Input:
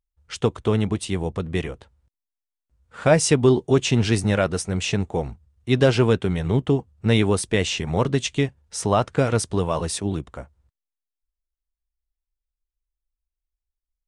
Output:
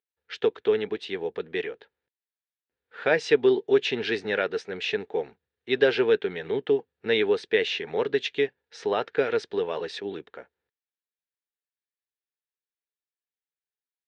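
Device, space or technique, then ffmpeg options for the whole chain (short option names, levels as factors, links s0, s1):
phone earpiece: -af "highpass=390,equalizer=f=430:t=q:w=4:g=10,equalizer=f=630:t=q:w=4:g=-5,equalizer=f=1100:t=q:w=4:g=-8,equalizer=f=1700:t=q:w=4:g=9,equalizer=f=2400:t=q:w=4:g=3,equalizer=f=3800:t=q:w=4:g=4,lowpass=f=4300:w=0.5412,lowpass=f=4300:w=1.3066,volume=0.596"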